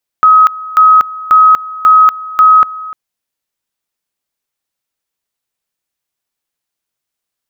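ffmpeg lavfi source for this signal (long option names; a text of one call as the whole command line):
ffmpeg -f lavfi -i "aevalsrc='pow(10,(-2-19*gte(mod(t,0.54),0.24))/20)*sin(2*PI*1270*t)':duration=2.7:sample_rate=44100" out.wav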